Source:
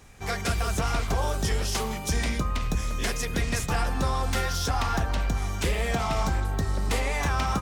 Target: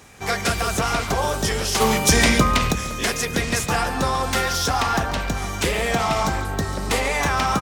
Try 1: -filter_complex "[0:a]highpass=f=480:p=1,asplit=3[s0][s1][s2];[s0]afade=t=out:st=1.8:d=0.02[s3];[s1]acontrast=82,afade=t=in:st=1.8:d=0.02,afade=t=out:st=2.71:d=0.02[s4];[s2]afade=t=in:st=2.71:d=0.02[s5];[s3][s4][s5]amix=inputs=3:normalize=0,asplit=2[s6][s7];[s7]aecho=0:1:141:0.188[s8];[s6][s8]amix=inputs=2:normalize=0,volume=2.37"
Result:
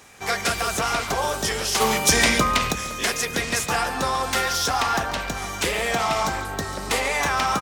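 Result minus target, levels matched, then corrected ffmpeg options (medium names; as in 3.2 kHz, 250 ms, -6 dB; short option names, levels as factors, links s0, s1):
125 Hz band -6.5 dB
-filter_complex "[0:a]highpass=f=170:p=1,asplit=3[s0][s1][s2];[s0]afade=t=out:st=1.8:d=0.02[s3];[s1]acontrast=82,afade=t=in:st=1.8:d=0.02,afade=t=out:st=2.71:d=0.02[s4];[s2]afade=t=in:st=2.71:d=0.02[s5];[s3][s4][s5]amix=inputs=3:normalize=0,asplit=2[s6][s7];[s7]aecho=0:1:141:0.188[s8];[s6][s8]amix=inputs=2:normalize=0,volume=2.37"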